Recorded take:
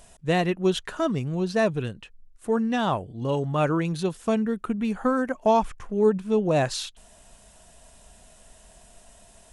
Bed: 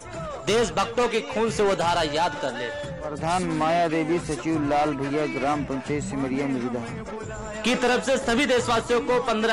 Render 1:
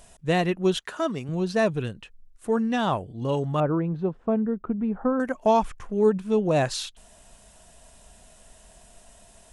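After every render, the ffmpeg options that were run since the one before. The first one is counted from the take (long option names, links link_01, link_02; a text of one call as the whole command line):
ffmpeg -i in.wav -filter_complex "[0:a]asettb=1/sr,asplit=3[link_01][link_02][link_03];[link_01]atrim=end=0.784[link_04];[link_02]atrim=start=0.78:end=1.29,asetpts=PTS-STARTPTS,afade=type=in:duration=0.004:curve=qsin,afade=type=out:start_time=0.506:duration=0.004:curve=qsin,highpass=frequency=290:poles=1[link_05];[link_03]atrim=start=1.286[link_06];[link_04][link_05]acrossfade=duration=0.004:curve1=hsin:curve2=qsin[link_07];[link_07][link_06]acrossfade=duration=0.004:curve1=qsin:curve2=hsin,asettb=1/sr,asplit=3[link_08][link_09][link_10];[link_08]atrim=end=3.604[link_11];[link_09]atrim=start=3.6:end=5.2,asetpts=PTS-STARTPTS,afade=type=in:duration=0.004:curve=qsin,afade=type=out:start_time=1.596:duration=0.004:curve=qsin,lowpass=1000[link_12];[link_10]atrim=start=5.196[link_13];[link_11][link_12]acrossfade=duration=0.004:curve1=hsin:curve2=qsin[link_14];[link_14][link_13]acrossfade=duration=0.004:curve1=qsin:curve2=hsin" out.wav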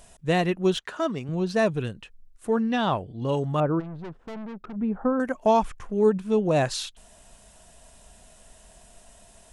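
ffmpeg -i in.wav -filter_complex "[0:a]asettb=1/sr,asplit=3[link_01][link_02][link_03];[link_01]atrim=end=0.744[link_04];[link_02]atrim=start=0.74:end=1.51,asetpts=PTS-STARTPTS,afade=type=in:duration=0.004:curve=qsin,afade=type=out:start_time=0.766:duration=0.004:curve=qsin,adynamicsmooth=sensitivity=7.5:basefreq=7700[link_05];[link_03]atrim=start=1.506[link_06];[link_04][link_05]acrossfade=duration=0.004:curve1=hsin:curve2=qsin[link_07];[link_07][link_06]acrossfade=duration=0.004:curve1=qsin:curve2=hsin,asettb=1/sr,asplit=3[link_08][link_09][link_10];[link_08]atrim=end=2.504[link_11];[link_09]atrim=start=2.5:end=3.27,asetpts=PTS-STARTPTS,afade=type=in:duration=0.004:curve=qsin,afade=type=out:start_time=0.766:duration=0.004:curve=qsin,highshelf=frequency=5700:width_type=q:width=1.5:gain=-6.5[link_12];[link_10]atrim=start=3.266[link_13];[link_11][link_12]acrossfade=duration=0.004:curve1=hsin:curve2=qsin[link_14];[link_14][link_13]acrossfade=duration=0.004:curve1=qsin:curve2=hsin,asplit=3[link_15][link_16][link_17];[link_15]afade=type=out:start_time=3.79:duration=0.02[link_18];[link_16]aeval=exprs='(tanh(56.2*val(0)+0.45)-tanh(0.45))/56.2':channel_layout=same,afade=type=in:start_time=3.79:duration=0.02,afade=type=out:start_time=4.75:duration=0.02[link_19];[link_17]afade=type=in:start_time=4.75:duration=0.02[link_20];[link_18][link_19][link_20]amix=inputs=3:normalize=0" out.wav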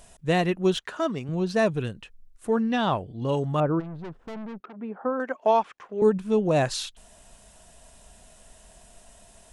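ffmpeg -i in.wav -filter_complex "[0:a]asettb=1/sr,asplit=3[link_01][link_02][link_03];[link_01]atrim=end=4.604[link_04];[link_02]atrim=start=4.6:end=6.02,asetpts=PTS-STARTPTS,afade=type=in:duration=0.004:curve=qsin,afade=type=out:start_time=1.416:duration=0.004:curve=qsin,highpass=370,lowpass=4000[link_05];[link_03]atrim=start=6.016[link_06];[link_04][link_05]acrossfade=duration=0.004:curve1=hsin:curve2=qsin[link_07];[link_07][link_06]acrossfade=duration=0.004:curve1=qsin:curve2=hsin" out.wav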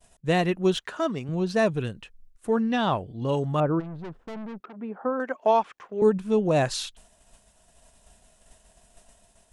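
ffmpeg -i in.wav -af "agate=range=-33dB:threshold=-45dB:ratio=3:detection=peak" out.wav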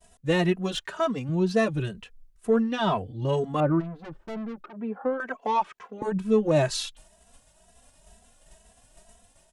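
ffmpeg -i in.wav -filter_complex "[0:a]asplit=2[link_01][link_02];[link_02]asoftclip=type=tanh:threshold=-20.5dB,volume=-6dB[link_03];[link_01][link_03]amix=inputs=2:normalize=0,asplit=2[link_04][link_05];[link_05]adelay=2.7,afreqshift=2.1[link_06];[link_04][link_06]amix=inputs=2:normalize=1" out.wav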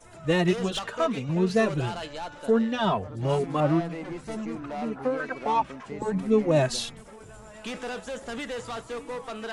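ffmpeg -i in.wav -i bed.wav -filter_complex "[1:a]volume=-13dB[link_01];[0:a][link_01]amix=inputs=2:normalize=0" out.wav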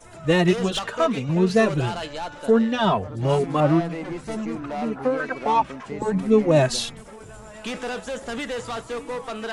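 ffmpeg -i in.wav -af "volume=4.5dB" out.wav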